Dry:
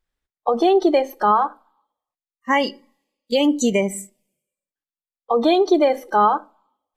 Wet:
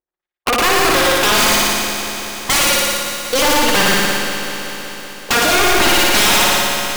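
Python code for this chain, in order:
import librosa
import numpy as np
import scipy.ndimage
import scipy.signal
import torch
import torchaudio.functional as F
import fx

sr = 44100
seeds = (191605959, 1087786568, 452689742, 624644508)

p1 = fx.level_steps(x, sr, step_db=20)
p2 = fx.filter_lfo_bandpass(p1, sr, shape='saw_up', hz=3.8, low_hz=390.0, high_hz=2700.0, q=1.1)
p3 = (np.mod(10.0 ** (23.5 / 20.0) * p2 + 1.0, 2.0) - 1.0) / 10.0 ** (23.5 / 20.0)
p4 = p3 + 10.0 ** (-3.0 / 20.0) * np.pad(p3, (int(111 * sr / 1000.0), 0))[:len(p3)]
p5 = fx.fold_sine(p4, sr, drive_db=9, ceiling_db=-13.0)
p6 = p5 + fx.room_flutter(p5, sr, wall_m=10.0, rt60_s=1.2, dry=0)
p7 = fx.leveller(p6, sr, passes=3)
p8 = fx.echo_crushed(p7, sr, ms=189, feedback_pct=80, bits=6, wet_db=-9.5)
y = p8 * librosa.db_to_amplitude(-4.5)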